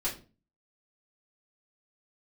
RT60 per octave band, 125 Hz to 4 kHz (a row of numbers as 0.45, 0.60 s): 0.50, 0.50, 0.40, 0.30, 0.30, 0.25 s